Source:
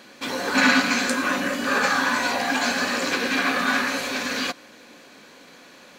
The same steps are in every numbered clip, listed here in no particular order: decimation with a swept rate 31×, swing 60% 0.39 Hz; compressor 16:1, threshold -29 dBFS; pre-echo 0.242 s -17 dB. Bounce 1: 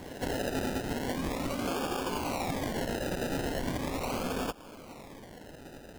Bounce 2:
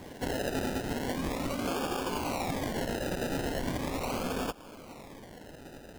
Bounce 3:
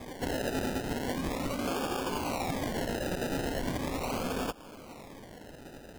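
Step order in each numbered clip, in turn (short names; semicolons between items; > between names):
decimation with a swept rate > pre-echo > compressor; decimation with a swept rate > compressor > pre-echo; pre-echo > decimation with a swept rate > compressor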